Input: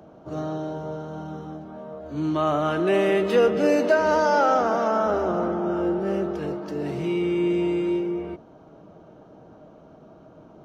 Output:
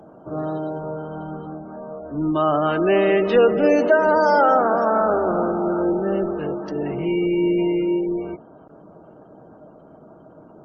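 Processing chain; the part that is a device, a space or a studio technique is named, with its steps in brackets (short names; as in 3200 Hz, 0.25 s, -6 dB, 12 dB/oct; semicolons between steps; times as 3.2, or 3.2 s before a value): noise-suppressed video call (HPF 130 Hz 6 dB/oct; spectral gate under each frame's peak -30 dB strong; gain +4 dB; Opus 20 kbps 48000 Hz)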